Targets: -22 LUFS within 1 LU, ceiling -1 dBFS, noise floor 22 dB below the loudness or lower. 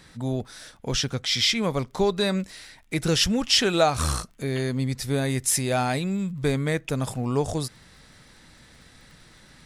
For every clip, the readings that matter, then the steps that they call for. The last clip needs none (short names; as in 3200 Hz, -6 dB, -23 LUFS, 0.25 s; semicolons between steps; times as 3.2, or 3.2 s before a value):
ticks 31/s; loudness -24.5 LUFS; peak -7.0 dBFS; loudness target -22.0 LUFS
-> de-click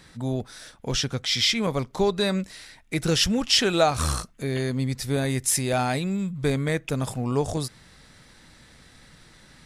ticks 0/s; loudness -24.5 LUFS; peak -7.0 dBFS; loudness target -22.0 LUFS
-> gain +2.5 dB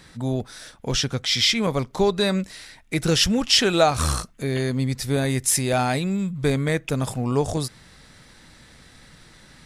loudness -22.0 LUFS; peak -4.5 dBFS; noise floor -51 dBFS